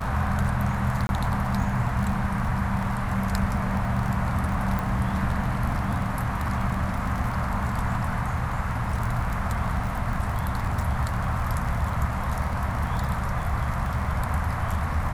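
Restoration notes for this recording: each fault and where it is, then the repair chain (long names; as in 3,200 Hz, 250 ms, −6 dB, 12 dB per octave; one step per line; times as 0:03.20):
surface crackle 30 per second −30 dBFS
0:01.07–0:01.09: drop-out 21 ms
0:04.79: click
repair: click removal
repair the gap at 0:01.07, 21 ms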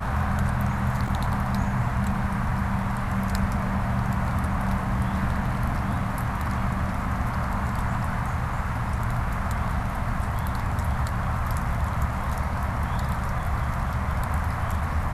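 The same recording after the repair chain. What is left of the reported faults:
none of them is left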